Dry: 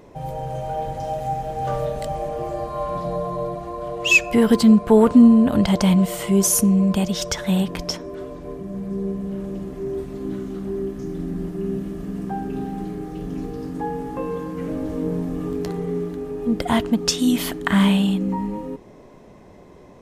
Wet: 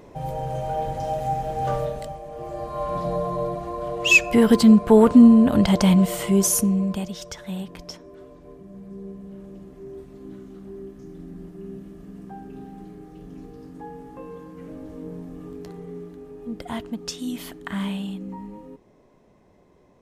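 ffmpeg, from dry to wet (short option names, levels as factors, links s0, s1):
-af "volume=3.98,afade=t=out:st=1.7:d=0.52:silence=0.251189,afade=t=in:st=2.22:d=0.8:silence=0.251189,afade=t=out:st=6.17:d=1.03:silence=0.266073"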